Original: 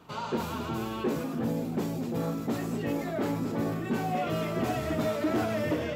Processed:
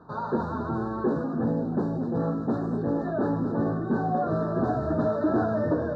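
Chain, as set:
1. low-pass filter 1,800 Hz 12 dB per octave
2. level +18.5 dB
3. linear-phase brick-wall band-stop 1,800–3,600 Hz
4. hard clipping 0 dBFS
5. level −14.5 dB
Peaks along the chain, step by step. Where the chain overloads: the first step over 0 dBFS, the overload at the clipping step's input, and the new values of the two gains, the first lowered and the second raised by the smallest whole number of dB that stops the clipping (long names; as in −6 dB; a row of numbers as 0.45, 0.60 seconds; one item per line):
−20.5, −2.0, −1.5, −1.5, −16.0 dBFS
no step passes full scale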